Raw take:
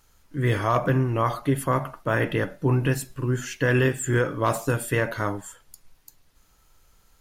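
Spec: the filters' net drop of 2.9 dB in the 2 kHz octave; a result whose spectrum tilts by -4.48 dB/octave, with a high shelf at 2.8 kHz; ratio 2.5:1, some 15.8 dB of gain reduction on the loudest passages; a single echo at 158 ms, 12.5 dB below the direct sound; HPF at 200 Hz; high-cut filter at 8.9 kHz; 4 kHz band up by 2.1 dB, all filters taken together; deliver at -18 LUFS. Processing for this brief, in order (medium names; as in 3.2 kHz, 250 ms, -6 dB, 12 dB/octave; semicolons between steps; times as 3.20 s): high-pass 200 Hz; low-pass 8.9 kHz; peaking EQ 2 kHz -5.5 dB; treble shelf 2.8 kHz +3 dB; peaking EQ 4 kHz +3 dB; compression 2.5:1, threshold -44 dBFS; delay 158 ms -12.5 dB; trim +23 dB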